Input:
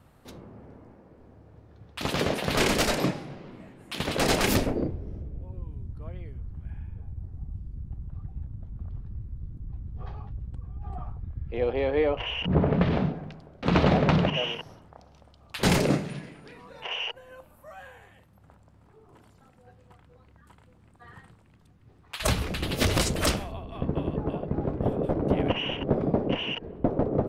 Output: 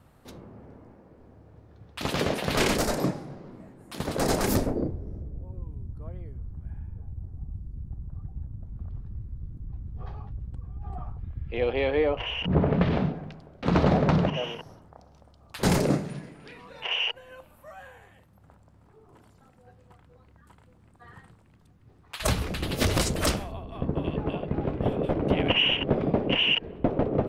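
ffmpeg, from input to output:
-af "asetnsamples=n=441:p=0,asendcmd='2.77 equalizer g -11;8.69 equalizer g -2;11.18 equalizer g 7.5;11.97 equalizer g 0;13.68 equalizer g -6.5;16.4 equalizer g 5;17.71 equalizer g -2;24.04 equalizer g 10',equalizer=f=2.8k:t=o:w=1.3:g=-1"

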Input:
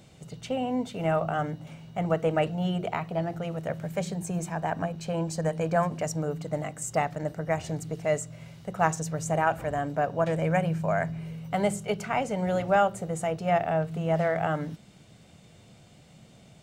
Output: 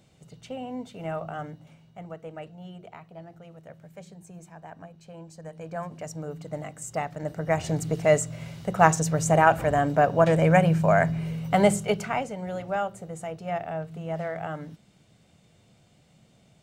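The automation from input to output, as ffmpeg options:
-af "volume=14.5dB,afade=t=out:st=1.44:d=0.7:silence=0.398107,afade=t=in:st=5.41:d=1.17:silence=0.281838,afade=t=in:st=7.12:d=0.77:silence=0.316228,afade=t=out:st=11.69:d=0.66:silence=0.237137"

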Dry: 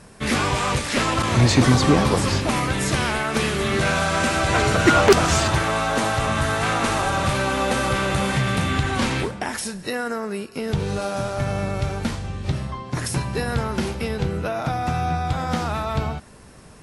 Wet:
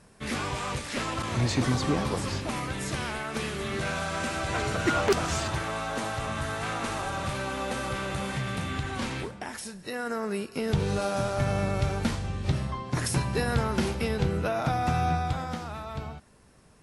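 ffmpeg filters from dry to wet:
-af "volume=-2.5dB,afade=t=in:st=9.85:d=0.44:silence=0.421697,afade=t=out:st=15.09:d=0.5:silence=0.334965"

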